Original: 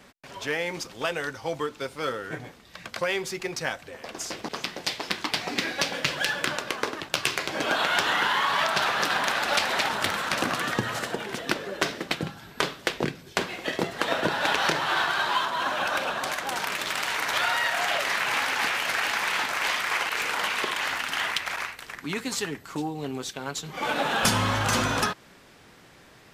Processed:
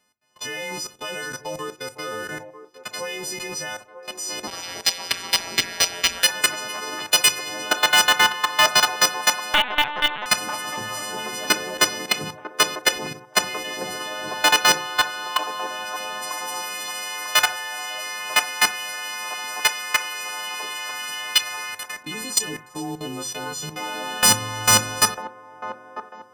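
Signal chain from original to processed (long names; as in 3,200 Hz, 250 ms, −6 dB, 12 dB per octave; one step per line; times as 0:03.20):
every partial snapped to a pitch grid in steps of 3 semitones
noise gate −33 dBFS, range −20 dB
output level in coarse steps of 19 dB
on a send at −8 dB: convolution reverb RT60 0.35 s, pre-delay 4 ms
0:04.47–0:06.24: on the sum: ring modulation 88 Hz
0:09.54–0:10.26: linear-prediction vocoder at 8 kHz pitch kept
delay with a band-pass on its return 946 ms, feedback 38%, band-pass 600 Hz, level −10.5 dB
in parallel at −11.5 dB: wrap-around overflow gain 17.5 dB
on the sum: level +5 dB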